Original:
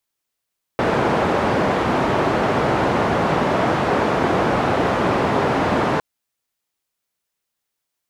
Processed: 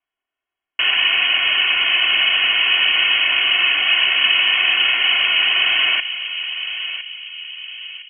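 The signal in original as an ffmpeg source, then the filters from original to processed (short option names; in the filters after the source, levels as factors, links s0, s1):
-f lavfi -i "anoisesrc=c=white:d=5.21:r=44100:seed=1,highpass=f=95,lowpass=f=860,volume=0.4dB"
-filter_complex "[0:a]aecho=1:1:2.7:0.77,asplit=2[s0][s1];[s1]adelay=1010,lowpass=f=1100:p=1,volume=0.376,asplit=2[s2][s3];[s3]adelay=1010,lowpass=f=1100:p=1,volume=0.5,asplit=2[s4][s5];[s5]adelay=1010,lowpass=f=1100:p=1,volume=0.5,asplit=2[s6][s7];[s7]adelay=1010,lowpass=f=1100:p=1,volume=0.5,asplit=2[s8][s9];[s9]adelay=1010,lowpass=f=1100:p=1,volume=0.5,asplit=2[s10][s11];[s11]adelay=1010,lowpass=f=1100:p=1,volume=0.5[s12];[s2][s4][s6][s8][s10][s12]amix=inputs=6:normalize=0[s13];[s0][s13]amix=inputs=2:normalize=0,lowpass=f=2800:t=q:w=0.5098,lowpass=f=2800:t=q:w=0.6013,lowpass=f=2800:t=q:w=0.9,lowpass=f=2800:t=q:w=2.563,afreqshift=-3300"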